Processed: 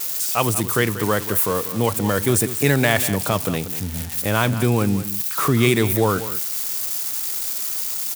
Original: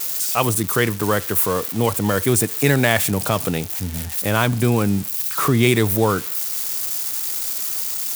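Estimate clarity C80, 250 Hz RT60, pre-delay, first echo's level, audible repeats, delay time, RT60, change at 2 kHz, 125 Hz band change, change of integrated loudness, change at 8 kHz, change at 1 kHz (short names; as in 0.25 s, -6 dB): none, none, none, -13.0 dB, 1, 0.189 s, none, -1.0 dB, -1.0 dB, -1.0 dB, -1.0 dB, -1.0 dB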